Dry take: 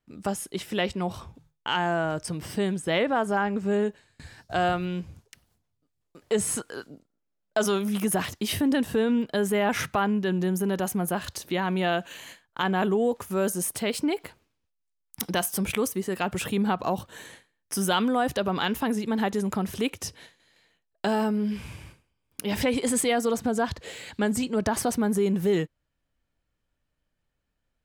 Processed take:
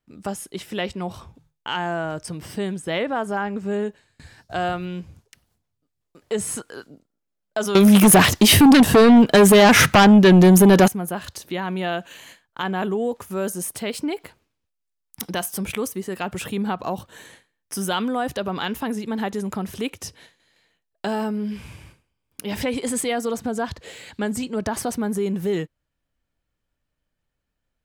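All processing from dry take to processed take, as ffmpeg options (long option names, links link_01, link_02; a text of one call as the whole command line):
ffmpeg -i in.wav -filter_complex "[0:a]asettb=1/sr,asplit=3[link_01][link_02][link_03];[link_01]atrim=end=7.754[link_04];[link_02]atrim=start=7.75:end=10.88,asetpts=PTS-STARTPTS,afade=type=in:duration=0.004:curve=qsin,afade=type=out:start_time=3.126:duration=0.004:curve=qsin,acontrast=72,aeval=exprs='0.422*sin(PI/2*2.24*val(0)/0.422)':channel_layout=same[link_05];[link_03]atrim=start=10.876[link_06];[link_04][link_05]acrossfade=duration=0.004:curve1=hsin:curve2=qsin[link_07];[link_07][link_06]acrossfade=duration=0.004:curve1=qsin:curve2=hsin" out.wav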